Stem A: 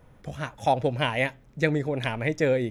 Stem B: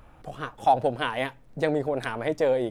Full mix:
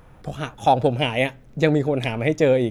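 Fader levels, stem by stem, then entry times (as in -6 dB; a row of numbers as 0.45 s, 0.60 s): +3.0 dB, 0.0 dB; 0.00 s, 0.00 s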